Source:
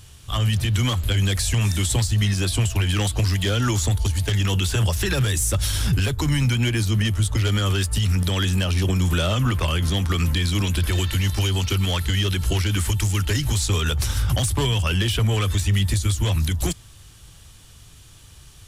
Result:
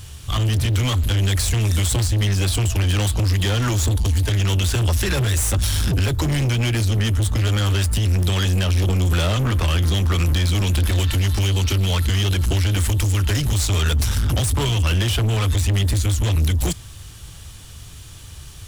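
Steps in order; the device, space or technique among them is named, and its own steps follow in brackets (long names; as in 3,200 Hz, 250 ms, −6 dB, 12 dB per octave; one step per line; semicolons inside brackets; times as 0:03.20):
open-reel tape (soft clipping −24.5 dBFS, distortion −10 dB; parametric band 78 Hz +4 dB 0.83 octaves; white noise bed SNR 42 dB)
level +6.5 dB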